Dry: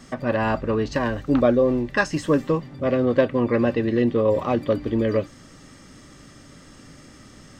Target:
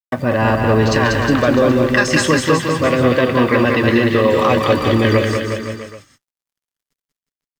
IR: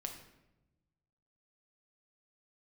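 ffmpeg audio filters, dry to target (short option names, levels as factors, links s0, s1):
-filter_complex "[0:a]highpass=f=49:w=0.5412,highpass=f=49:w=1.3066,agate=range=0.00398:threshold=0.0112:ratio=16:detection=peak,equalizer=f=95:w=2:g=5,acrossover=split=1100[s0][s1];[s1]dynaudnorm=f=390:g=5:m=3.98[s2];[s0][s2]amix=inputs=2:normalize=0,alimiter=limit=0.266:level=0:latency=1:release=153,asplit=2[s3][s4];[s4]acompressor=threshold=0.0355:ratio=6,volume=1.06[s5];[s3][s5]amix=inputs=2:normalize=0,acrusher=bits=9:dc=4:mix=0:aa=0.000001,aecho=1:1:190|361|514.9|653.4|778.1:0.631|0.398|0.251|0.158|0.1,volume=1.5"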